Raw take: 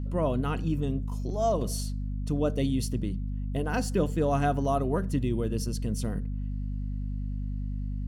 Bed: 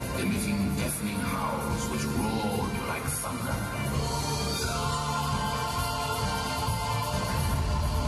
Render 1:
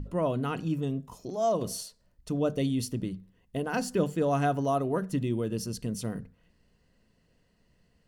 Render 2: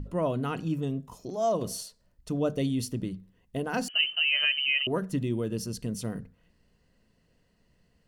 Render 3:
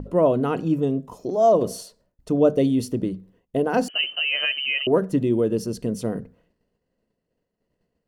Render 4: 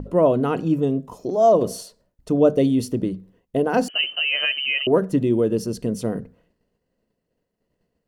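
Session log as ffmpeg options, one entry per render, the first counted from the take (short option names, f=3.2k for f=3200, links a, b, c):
-af "bandreject=f=50:t=h:w=6,bandreject=f=100:t=h:w=6,bandreject=f=150:t=h:w=6,bandreject=f=200:t=h:w=6,bandreject=f=250:t=h:w=6"
-filter_complex "[0:a]asettb=1/sr,asplit=3[a][b][c];[a]atrim=end=3.884[d];[b]atrim=start=3.88:end=4.87,asetpts=PTS-STARTPTS,afade=t=in:d=0.004:c=qsin,afade=t=out:st=0.986:d=0.004:c=qsin,lowpass=f=2.7k:t=q:w=0.5098,lowpass=f=2.7k:t=q:w=0.6013,lowpass=f=2.7k:t=q:w=0.9,lowpass=f=2.7k:t=q:w=2.563,afreqshift=-3200[e];[c]atrim=start=4.866[f];[d][e]acrossfade=d=0.004:c1=hsin:c2=qsin[g];[g][f]acrossfade=d=0.004:c1=qsin:c2=hsin"
-af "agate=range=-33dB:threshold=-56dB:ratio=3:detection=peak,equalizer=f=460:w=0.52:g=12"
-af "volume=1.5dB"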